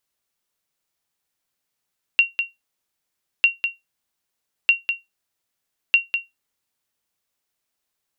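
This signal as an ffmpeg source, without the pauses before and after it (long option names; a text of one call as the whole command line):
ffmpeg -f lavfi -i "aevalsrc='0.501*(sin(2*PI*2750*mod(t,1.25))*exp(-6.91*mod(t,1.25)/0.18)+0.422*sin(2*PI*2750*max(mod(t,1.25)-0.2,0))*exp(-6.91*max(mod(t,1.25)-0.2,0)/0.18))':duration=5:sample_rate=44100" out.wav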